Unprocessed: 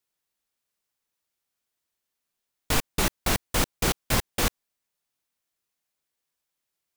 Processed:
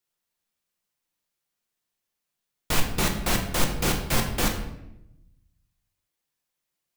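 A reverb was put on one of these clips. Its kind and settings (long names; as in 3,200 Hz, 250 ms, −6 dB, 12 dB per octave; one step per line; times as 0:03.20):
rectangular room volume 270 cubic metres, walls mixed, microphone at 0.87 metres
level −1.5 dB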